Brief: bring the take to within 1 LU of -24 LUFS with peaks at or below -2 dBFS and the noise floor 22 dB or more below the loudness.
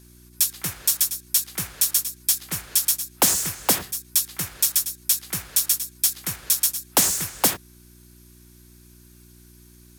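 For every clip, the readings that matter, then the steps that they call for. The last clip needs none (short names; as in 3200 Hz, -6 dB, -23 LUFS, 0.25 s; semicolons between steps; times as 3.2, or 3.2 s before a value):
hum 60 Hz; harmonics up to 360 Hz; hum level -49 dBFS; loudness -21.5 LUFS; peak -2.5 dBFS; loudness target -24.0 LUFS
-> de-hum 60 Hz, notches 6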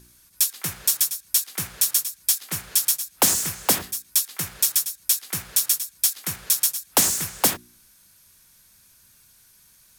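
hum none; loudness -21.5 LUFS; peak -2.5 dBFS; loudness target -24.0 LUFS
-> gain -2.5 dB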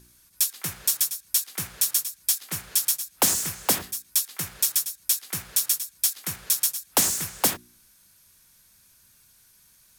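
loudness -24.0 LUFS; peak -5.0 dBFS; noise floor -59 dBFS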